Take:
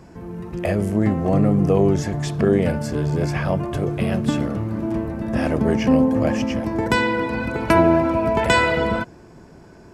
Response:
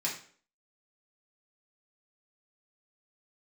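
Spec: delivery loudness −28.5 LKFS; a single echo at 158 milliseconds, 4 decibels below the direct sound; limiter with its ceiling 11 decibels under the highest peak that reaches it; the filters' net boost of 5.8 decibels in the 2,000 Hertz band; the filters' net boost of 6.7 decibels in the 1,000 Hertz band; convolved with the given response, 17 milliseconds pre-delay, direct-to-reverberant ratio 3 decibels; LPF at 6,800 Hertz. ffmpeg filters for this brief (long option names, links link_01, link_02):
-filter_complex "[0:a]lowpass=6800,equalizer=frequency=1000:width_type=o:gain=6.5,equalizer=frequency=2000:width_type=o:gain=5,alimiter=limit=-8.5dB:level=0:latency=1,aecho=1:1:158:0.631,asplit=2[link_01][link_02];[1:a]atrim=start_sample=2205,adelay=17[link_03];[link_02][link_03]afir=irnorm=-1:irlink=0,volume=-8dB[link_04];[link_01][link_04]amix=inputs=2:normalize=0,volume=-11.5dB"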